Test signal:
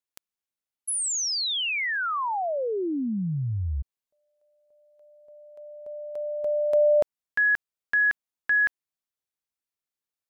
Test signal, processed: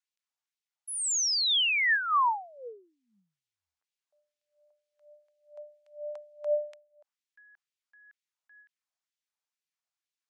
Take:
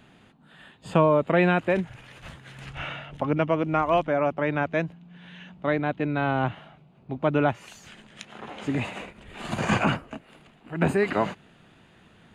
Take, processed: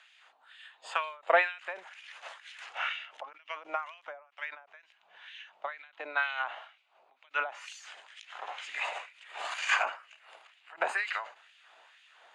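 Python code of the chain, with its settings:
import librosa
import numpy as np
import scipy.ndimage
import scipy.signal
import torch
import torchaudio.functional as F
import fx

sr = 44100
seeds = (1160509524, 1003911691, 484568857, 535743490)

y = fx.filter_lfo_highpass(x, sr, shape='sine', hz=2.1, low_hz=640.0, high_hz=2600.0, q=1.4)
y = fx.dynamic_eq(y, sr, hz=1500.0, q=1.3, threshold_db=-35.0, ratio=4.0, max_db=3)
y = scipy.signal.sosfilt(scipy.signal.cheby1(2, 1.0, [590.0, 7000.0], 'bandpass', fs=sr, output='sos'), y)
y = fx.end_taper(y, sr, db_per_s=140.0)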